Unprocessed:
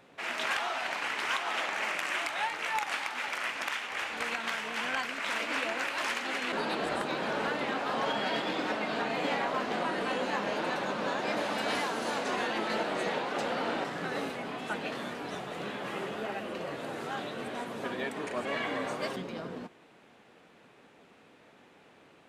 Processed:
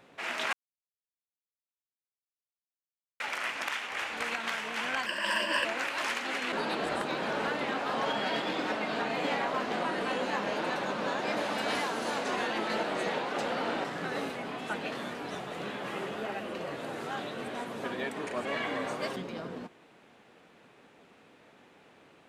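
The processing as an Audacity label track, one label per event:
0.530000	3.200000	mute
5.060000	5.650000	ripple EQ crests per octave 1.3, crest to trough 17 dB

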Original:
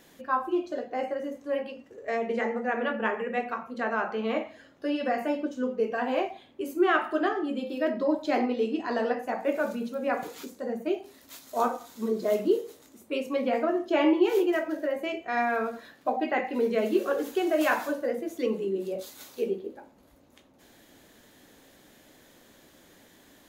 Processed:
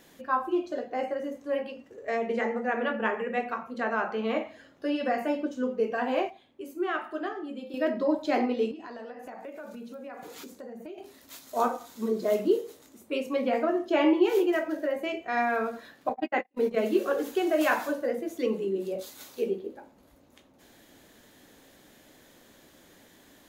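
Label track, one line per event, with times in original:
6.300000	7.740000	gain -7 dB
8.710000	10.980000	compressor, threshold -39 dBFS
16.090000	16.860000	gate -28 dBFS, range -47 dB

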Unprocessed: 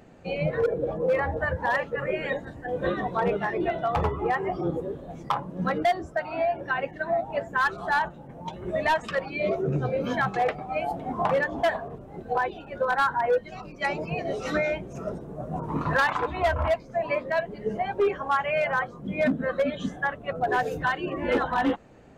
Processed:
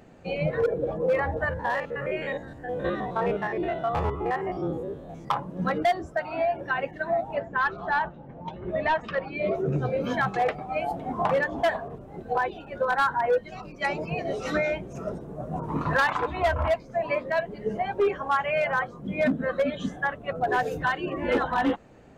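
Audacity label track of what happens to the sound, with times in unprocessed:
1.490000	5.280000	stepped spectrum every 50 ms
7.350000	9.550000	air absorption 190 m

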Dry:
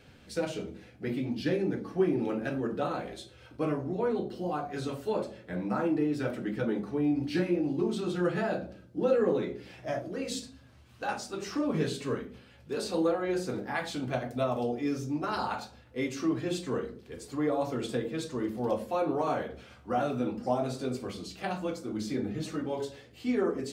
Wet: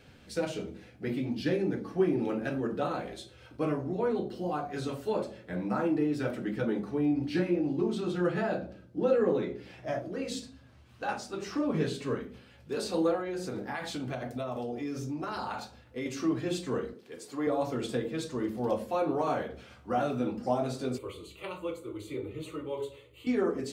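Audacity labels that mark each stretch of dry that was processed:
7.060000	12.210000	high shelf 4900 Hz -5 dB
13.200000	16.060000	compressor, threshold -31 dBFS
16.930000	17.470000	Bessel high-pass 270 Hz
20.980000	23.270000	fixed phaser centre 1100 Hz, stages 8

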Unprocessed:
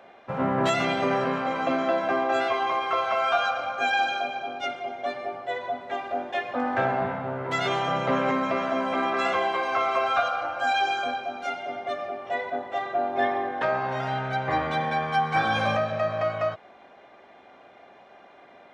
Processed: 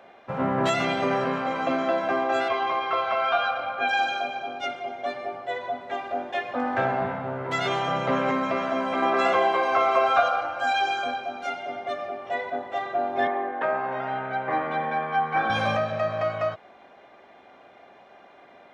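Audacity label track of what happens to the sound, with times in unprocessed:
2.480000	3.880000	LPF 5800 Hz -> 3800 Hz 24 dB/oct
9.020000	10.410000	bell 530 Hz +5 dB 2.4 oct
13.270000	15.500000	three-band isolator lows -22 dB, under 170 Hz, highs -20 dB, over 2800 Hz

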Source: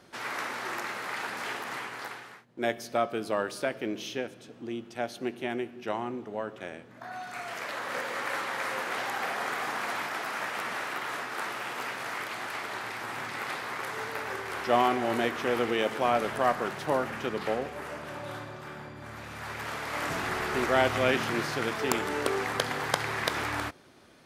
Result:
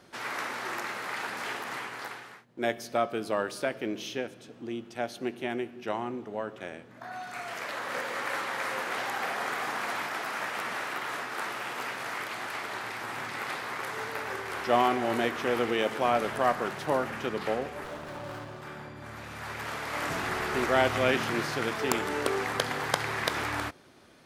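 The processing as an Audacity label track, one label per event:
17.840000	18.620000	running maximum over 9 samples

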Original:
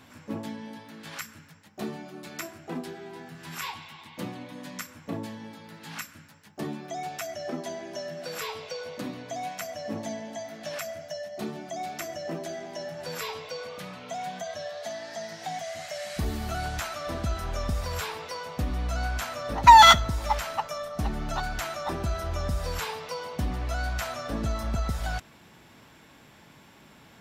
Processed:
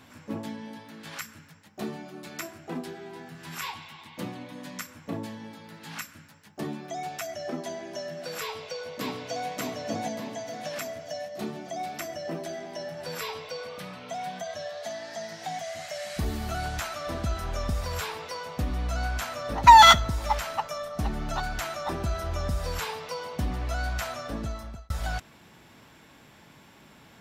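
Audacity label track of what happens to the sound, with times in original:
8.410000	9.490000	echo throw 0.59 s, feedback 55%, level -1 dB
11.700000	14.500000	notch 6800 Hz, Q 10
23.870000	24.900000	fade out equal-power

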